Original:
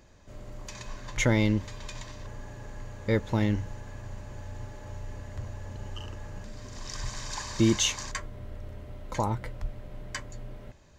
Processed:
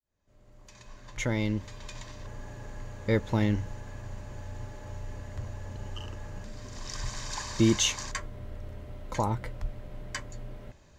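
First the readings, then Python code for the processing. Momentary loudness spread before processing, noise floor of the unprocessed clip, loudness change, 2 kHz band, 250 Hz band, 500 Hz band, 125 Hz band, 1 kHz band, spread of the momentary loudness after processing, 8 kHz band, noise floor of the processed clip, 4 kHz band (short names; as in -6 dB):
19 LU, -49 dBFS, -1.5 dB, -2.0 dB, -1.0 dB, -1.0 dB, -1.5 dB, -0.5 dB, 18 LU, -0.5 dB, -57 dBFS, -0.5 dB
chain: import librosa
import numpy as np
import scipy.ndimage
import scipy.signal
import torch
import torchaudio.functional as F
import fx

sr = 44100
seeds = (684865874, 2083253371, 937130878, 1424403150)

y = fx.fade_in_head(x, sr, length_s=2.5)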